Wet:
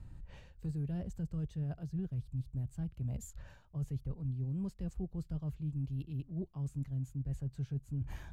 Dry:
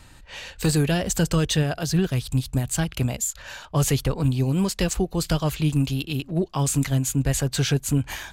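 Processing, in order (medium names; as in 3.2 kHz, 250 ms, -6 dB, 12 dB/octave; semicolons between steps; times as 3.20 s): FFT filter 150 Hz 0 dB, 270 Hz -9 dB, 3.5 kHz -26 dB; reverse; compression 4:1, threshold -39 dBFS, peak gain reduction 17.5 dB; reverse; trim +1 dB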